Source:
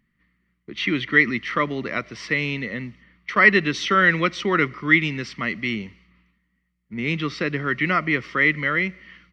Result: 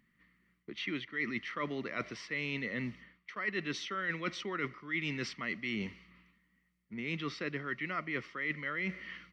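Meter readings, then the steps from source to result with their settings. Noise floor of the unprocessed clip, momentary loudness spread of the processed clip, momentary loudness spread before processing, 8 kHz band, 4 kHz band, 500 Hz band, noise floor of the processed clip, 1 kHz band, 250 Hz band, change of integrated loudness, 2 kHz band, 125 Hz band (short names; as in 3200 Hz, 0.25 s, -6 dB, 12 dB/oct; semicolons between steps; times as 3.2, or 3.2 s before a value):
-72 dBFS, 8 LU, 13 LU, n/a, -12.5 dB, -15.0 dB, -76 dBFS, -17.0 dB, -14.0 dB, -16.0 dB, -16.5 dB, -14.5 dB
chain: low shelf 120 Hz -9.5 dB; reverse; compressor 8:1, threshold -34 dBFS, peak gain reduction 23.5 dB; reverse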